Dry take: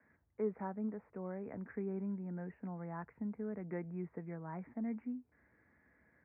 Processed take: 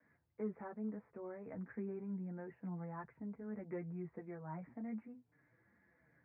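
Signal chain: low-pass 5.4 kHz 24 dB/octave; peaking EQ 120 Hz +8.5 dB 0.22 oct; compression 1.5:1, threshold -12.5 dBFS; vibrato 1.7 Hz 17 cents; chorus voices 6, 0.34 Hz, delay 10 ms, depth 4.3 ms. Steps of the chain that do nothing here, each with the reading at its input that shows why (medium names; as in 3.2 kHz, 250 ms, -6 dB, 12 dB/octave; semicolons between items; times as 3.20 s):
low-pass 5.4 kHz: input has nothing above 1.2 kHz; compression, threshold -12.5 dBFS: peak at its input -26.0 dBFS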